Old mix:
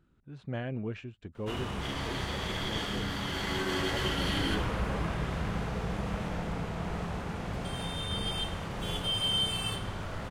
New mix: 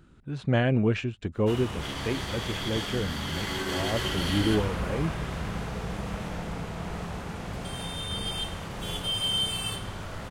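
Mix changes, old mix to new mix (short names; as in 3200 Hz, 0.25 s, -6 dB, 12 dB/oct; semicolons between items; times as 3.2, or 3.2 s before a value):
speech +12.0 dB; master: add high shelf 4900 Hz +6.5 dB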